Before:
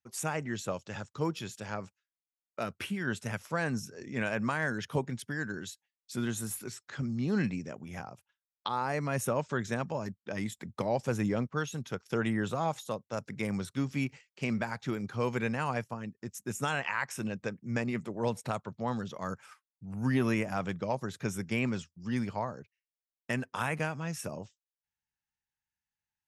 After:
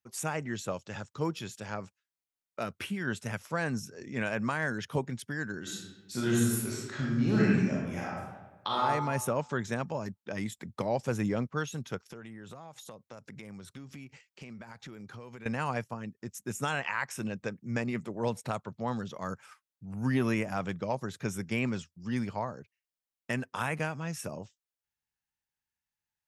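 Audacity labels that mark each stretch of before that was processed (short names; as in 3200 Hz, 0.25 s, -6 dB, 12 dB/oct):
5.610000	8.810000	reverb throw, RT60 1.2 s, DRR -5 dB
12.010000	15.460000	compressor 10:1, threshold -42 dBFS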